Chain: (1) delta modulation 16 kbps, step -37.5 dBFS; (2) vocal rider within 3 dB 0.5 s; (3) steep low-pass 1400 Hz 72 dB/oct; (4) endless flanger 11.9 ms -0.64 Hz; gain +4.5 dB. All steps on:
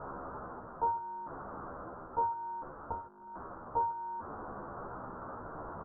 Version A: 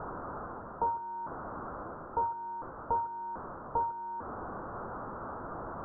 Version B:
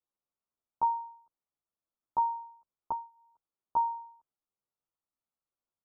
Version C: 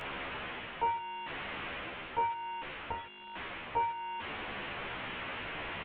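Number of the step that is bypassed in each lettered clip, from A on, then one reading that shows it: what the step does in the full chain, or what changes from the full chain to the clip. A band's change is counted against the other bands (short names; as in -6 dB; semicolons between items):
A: 4, momentary loudness spread change -3 LU; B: 1, momentary loudness spread change +8 LU; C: 3, momentary loudness spread change -4 LU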